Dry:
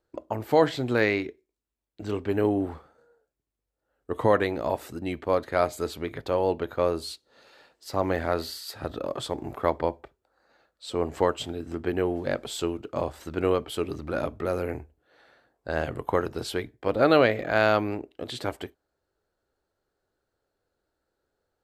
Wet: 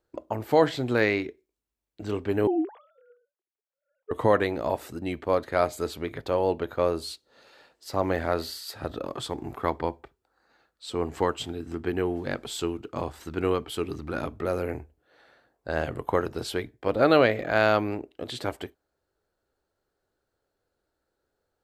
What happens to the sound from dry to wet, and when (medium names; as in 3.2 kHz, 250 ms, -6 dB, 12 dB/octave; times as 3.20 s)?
2.47–4.11 s: formants replaced by sine waves
9.04–14.39 s: peaking EQ 580 Hz -7.5 dB 0.39 oct